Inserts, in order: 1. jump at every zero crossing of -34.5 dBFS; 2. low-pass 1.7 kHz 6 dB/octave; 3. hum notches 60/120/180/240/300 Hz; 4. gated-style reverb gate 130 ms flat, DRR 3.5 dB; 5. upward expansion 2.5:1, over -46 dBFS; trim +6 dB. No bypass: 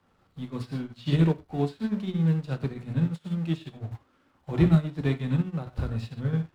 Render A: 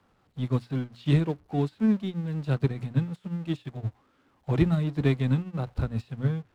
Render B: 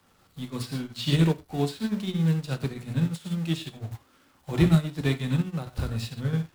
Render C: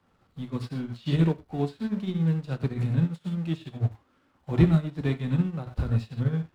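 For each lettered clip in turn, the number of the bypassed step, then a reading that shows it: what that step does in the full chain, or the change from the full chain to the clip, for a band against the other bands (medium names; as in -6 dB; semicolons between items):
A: 4, momentary loudness spread change -5 LU; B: 2, 4 kHz band +8.0 dB; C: 3, crest factor change +2.0 dB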